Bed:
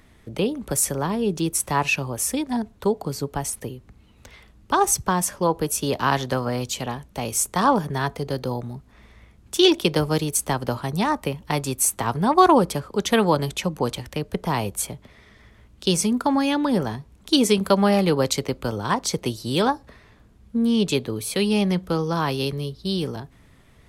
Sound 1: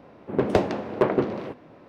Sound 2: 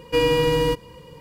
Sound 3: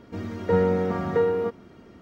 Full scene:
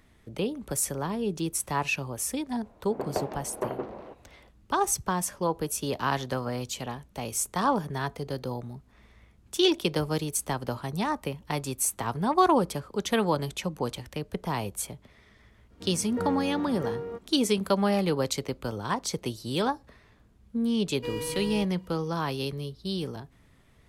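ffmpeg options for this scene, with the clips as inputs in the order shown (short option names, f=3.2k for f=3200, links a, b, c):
-filter_complex "[0:a]volume=-6.5dB[a];[1:a]equalizer=f=790:t=o:w=1.5:g=9,atrim=end=1.88,asetpts=PTS-STARTPTS,volume=-15dB,afade=t=in:d=0.004:c=hsin,afade=t=out:st=1.876:d=0.004:c=hsin,adelay=2610[b];[3:a]atrim=end=2.01,asetpts=PTS-STARTPTS,volume=-11dB,afade=t=in:d=0.05,afade=t=out:st=1.96:d=0.05,adelay=15680[c];[2:a]atrim=end=1.2,asetpts=PTS-STARTPTS,volume=-16dB,afade=t=in:d=0.004:c=hsin,afade=t=out:st=1.196:d=0.004:c=hsin,adelay=20900[d];[a][b][c][d]amix=inputs=4:normalize=0"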